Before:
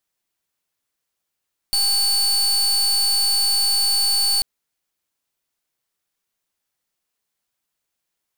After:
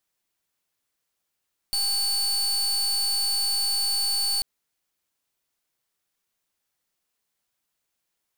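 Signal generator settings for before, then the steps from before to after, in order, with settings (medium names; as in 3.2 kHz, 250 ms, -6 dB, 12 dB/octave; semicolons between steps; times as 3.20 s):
pulse 4.49 kHz, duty 34% -18.5 dBFS 2.69 s
peak limiter -24.5 dBFS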